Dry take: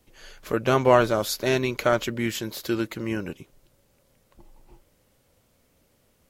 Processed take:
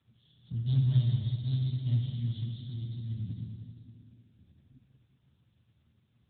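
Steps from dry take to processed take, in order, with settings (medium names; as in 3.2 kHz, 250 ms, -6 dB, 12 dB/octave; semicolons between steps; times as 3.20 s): self-modulated delay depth 0.31 ms; inverse Chebyshev band-stop 270–2600 Hz, stop band 40 dB; hum notches 50/100/150/200/250/300/350/400/450 Hz; Schroeder reverb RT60 2.3 s, combs from 26 ms, DRR -0.5 dB; trim +5.5 dB; AMR-NB 10.2 kbps 8 kHz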